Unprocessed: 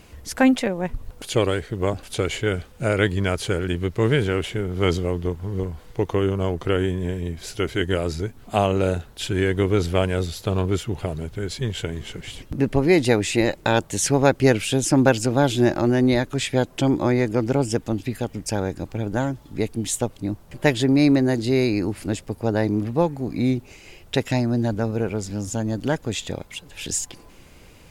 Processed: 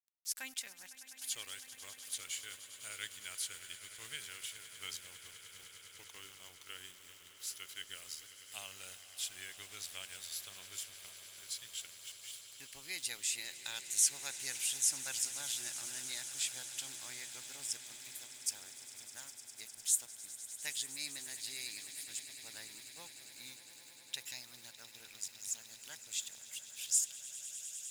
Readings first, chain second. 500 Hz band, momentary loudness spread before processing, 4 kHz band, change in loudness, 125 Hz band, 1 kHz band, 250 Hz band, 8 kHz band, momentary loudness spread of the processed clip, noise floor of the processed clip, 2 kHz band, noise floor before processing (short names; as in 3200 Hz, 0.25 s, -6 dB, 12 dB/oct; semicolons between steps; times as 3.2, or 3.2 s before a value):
under -40 dB, 11 LU, -10.5 dB, -17.0 dB, under -40 dB, -30.0 dB, under -40 dB, -3.5 dB, 18 LU, -58 dBFS, -19.0 dB, -48 dBFS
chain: pre-emphasis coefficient 0.97; sample gate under -46.5 dBFS; passive tone stack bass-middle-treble 5-5-5; on a send: swelling echo 0.101 s, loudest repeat 8, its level -17.5 dB; on the sum: gain +1.5 dB